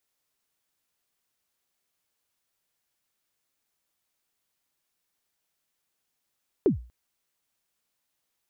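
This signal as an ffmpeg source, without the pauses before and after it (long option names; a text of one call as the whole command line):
ffmpeg -f lavfi -i "aevalsrc='0.2*pow(10,-3*t/0.37)*sin(2*PI*(450*0.122/log(60/450)*(exp(log(60/450)*min(t,0.122)/0.122)-1)+60*max(t-0.122,0)))':duration=0.24:sample_rate=44100" out.wav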